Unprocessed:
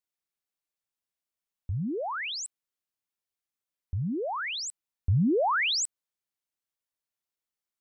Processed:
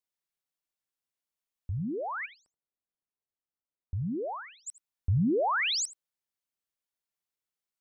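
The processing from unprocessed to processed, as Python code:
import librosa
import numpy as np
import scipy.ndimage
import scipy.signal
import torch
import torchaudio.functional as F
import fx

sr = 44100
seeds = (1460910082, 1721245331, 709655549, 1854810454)

y = fx.lowpass(x, sr, hz=1000.0, slope=12, at=(2.25, 4.66), fade=0.02)
y = y + 10.0 ** (-18.0 / 20.0) * np.pad(y, (int(80 * sr / 1000.0), 0))[:len(y)]
y = y * librosa.db_to_amplitude(-2.0)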